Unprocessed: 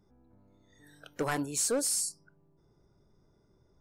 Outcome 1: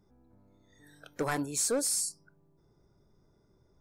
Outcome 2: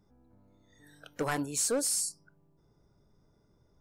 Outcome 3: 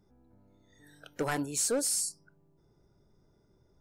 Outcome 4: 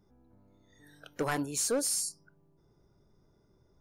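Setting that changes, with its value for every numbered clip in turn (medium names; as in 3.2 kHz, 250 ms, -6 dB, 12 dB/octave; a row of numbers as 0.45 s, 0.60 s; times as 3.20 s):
band-stop, frequency: 2.9 kHz, 370 Hz, 1.1 kHz, 7.9 kHz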